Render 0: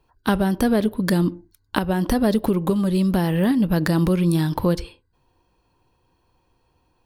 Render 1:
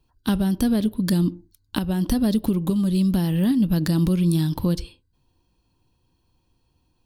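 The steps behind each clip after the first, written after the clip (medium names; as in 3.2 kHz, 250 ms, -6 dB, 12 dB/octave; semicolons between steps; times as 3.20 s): high-order bell 950 Hz -9 dB 2.9 oct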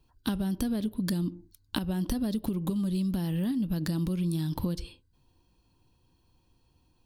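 compression, threshold -27 dBFS, peak gain reduction 10.5 dB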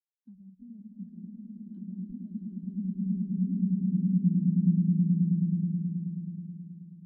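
distance through air 140 m; on a send: echo with a slow build-up 107 ms, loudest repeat 8, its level -4 dB; on the sum: spectral contrast expander 2.5:1; trim -5.5 dB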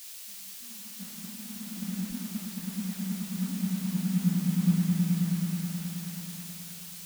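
recorder AGC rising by 5.6 dB/s; added noise white -40 dBFS; three bands expanded up and down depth 70%; trim -3 dB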